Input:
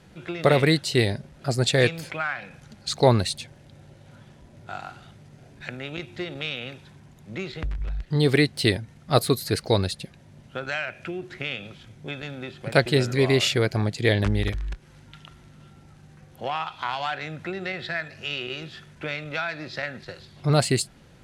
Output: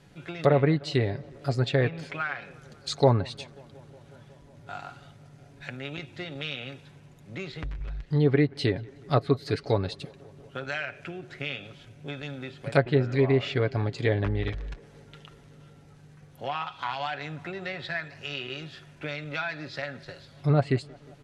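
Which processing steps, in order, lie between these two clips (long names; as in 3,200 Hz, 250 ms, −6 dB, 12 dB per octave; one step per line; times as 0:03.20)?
treble cut that deepens with the level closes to 1,500 Hz, closed at −16 dBFS
comb filter 7.1 ms, depth 43%
tape delay 181 ms, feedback 87%, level −23.5 dB, low-pass 2,300 Hz
level −4 dB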